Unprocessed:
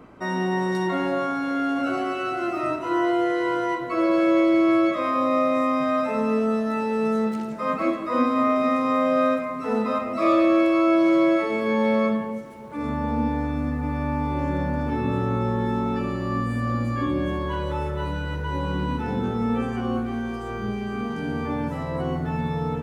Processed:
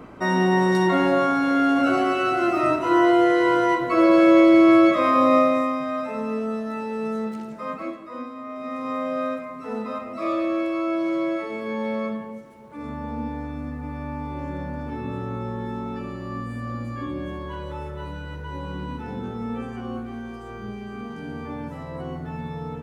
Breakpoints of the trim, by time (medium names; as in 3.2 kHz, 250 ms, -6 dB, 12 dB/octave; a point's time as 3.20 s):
5.36 s +5 dB
5.82 s -4.5 dB
7.59 s -4.5 dB
8.42 s -16 dB
8.88 s -6 dB